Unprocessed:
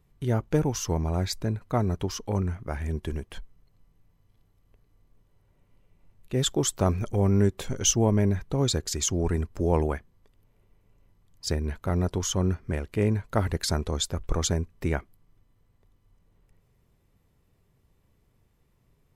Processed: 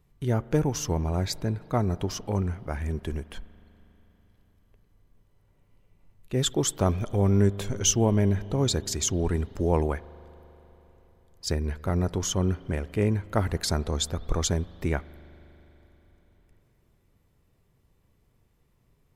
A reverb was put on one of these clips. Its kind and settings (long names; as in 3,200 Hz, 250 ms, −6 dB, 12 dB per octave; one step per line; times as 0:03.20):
spring reverb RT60 4 s, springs 40 ms, chirp 50 ms, DRR 18.5 dB